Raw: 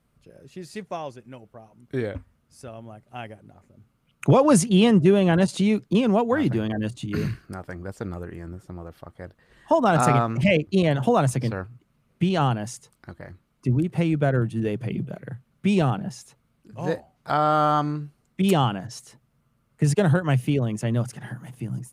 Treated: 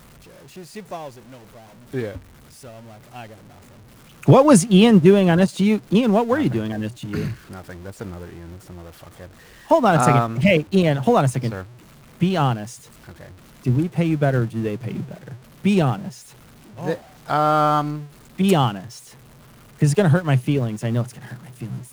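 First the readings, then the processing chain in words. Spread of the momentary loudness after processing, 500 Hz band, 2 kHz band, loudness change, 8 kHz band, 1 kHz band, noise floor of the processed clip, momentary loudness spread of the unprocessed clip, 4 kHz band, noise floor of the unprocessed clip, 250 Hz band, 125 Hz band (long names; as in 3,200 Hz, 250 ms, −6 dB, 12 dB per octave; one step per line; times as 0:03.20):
21 LU, +3.5 dB, +3.0 dB, +4.0 dB, +3.0 dB, +3.0 dB, −47 dBFS, 21 LU, +3.5 dB, −68 dBFS, +3.5 dB, +3.0 dB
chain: converter with a step at zero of −34.5 dBFS
expander for the loud parts 1.5 to 1, over −37 dBFS
level +5.5 dB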